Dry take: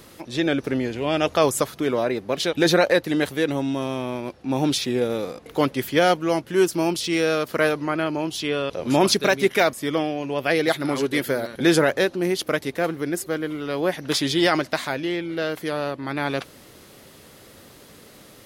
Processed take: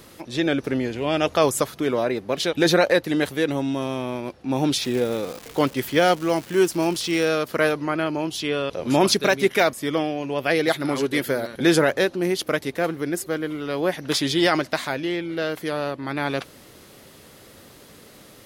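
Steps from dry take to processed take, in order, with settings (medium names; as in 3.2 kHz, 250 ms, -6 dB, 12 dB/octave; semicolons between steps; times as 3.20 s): 4.80–7.28 s: crackle 400 per s -28 dBFS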